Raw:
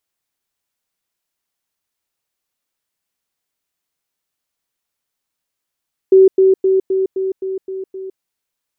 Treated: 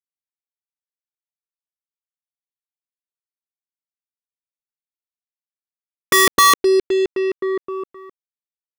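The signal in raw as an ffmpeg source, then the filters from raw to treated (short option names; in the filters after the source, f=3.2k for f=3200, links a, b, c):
-f lavfi -i "aevalsrc='pow(10,(-4-3*floor(t/0.26))/20)*sin(2*PI*381*t)*clip(min(mod(t,0.26),0.16-mod(t,0.26))/0.005,0,1)':d=2.08:s=44100"
-af "aeval=exprs='(mod(2.51*val(0)+1,2)-1)/2.51':c=same,acrusher=bits=3:mix=0:aa=0.5"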